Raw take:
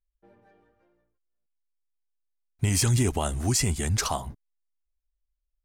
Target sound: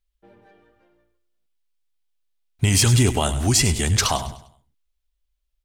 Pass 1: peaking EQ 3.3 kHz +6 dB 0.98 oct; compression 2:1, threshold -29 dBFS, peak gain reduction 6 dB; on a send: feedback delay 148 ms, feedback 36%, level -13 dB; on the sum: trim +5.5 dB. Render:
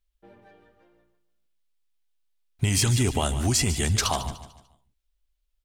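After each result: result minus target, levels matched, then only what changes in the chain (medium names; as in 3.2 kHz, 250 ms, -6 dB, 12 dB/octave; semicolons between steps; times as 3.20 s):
echo 48 ms late; compression: peak gain reduction +6 dB
change: feedback delay 100 ms, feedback 36%, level -13 dB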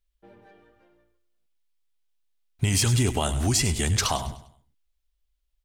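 compression: peak gain reduction +6 dB
remove: compression 2:1, threshold -29 dBFS, peak gain reduction 6 dB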